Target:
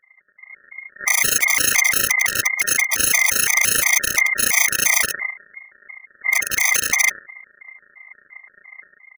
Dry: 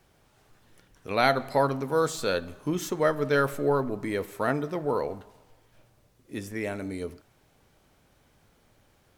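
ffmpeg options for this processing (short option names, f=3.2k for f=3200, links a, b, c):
-filter_complex "[0:a]afftfilt=real='re':imag='-im':win_size=8192:overlap=0.75,asplit=2[a][b];[b]acompressor=threshold=-41dB:ratio=8,volume=1dB[c];[a][c]amix=inputs=2:normalize=0,aecho=1:1:73|146:0.0631|0.0208,aresample=11025,acrusher=samples=32:mix=1:aa=0.000001,aresample=44100,lowpass=f=3.1k:t=q:w=0.5098,lowpass=f=3.1k:t=q:w=0.6013,lowpass=f=3.1k:t=q:w=0.9,lowpass=f=3.1k:t=q:w=2.563,afreqshift=-3600,bandreject=f=272.1:t=h:w=4,bandreject=f=544.2:t=h:w=4,bandreject=f=816.3:t=h:w=4,asetrate=26222,aresample=44100,atempo=1.68179,dynaudnorm=f=110:g=9:m=16dB,aeval=exprs='(mod(5.01*val(0)+1,2)-1)/5.01':c=same,tremolo=f=28:d=0.788,afftfilt=real='re*gt(sin(2*PI*2.9*pts/sr)*(1-2*mod(floor(b*sr/1024/630),2)),0)':imag='im*gt(sin(2*PI*2.9*pts/sr)*(1-2*mod(floor(b*sr/1024/630),2)),0)':win_size=1024:overlap=0.75,volume=8dB"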